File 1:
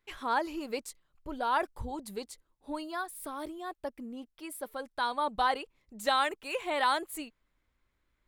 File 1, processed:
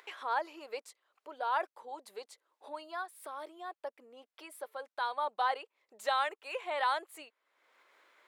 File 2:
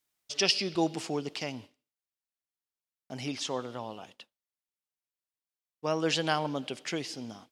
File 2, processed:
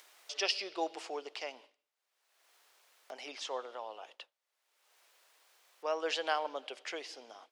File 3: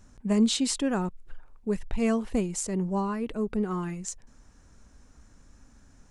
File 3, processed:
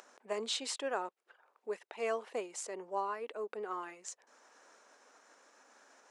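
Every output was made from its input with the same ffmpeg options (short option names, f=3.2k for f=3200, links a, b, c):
-af "lowpass=f=3.2k:p=1,acompressor=mode=upward:threshold=-36dB:ratio=2.5,highpass=f=460:w=0.5412,highpass=f=460:w=1.3066,volume=-2.5dB"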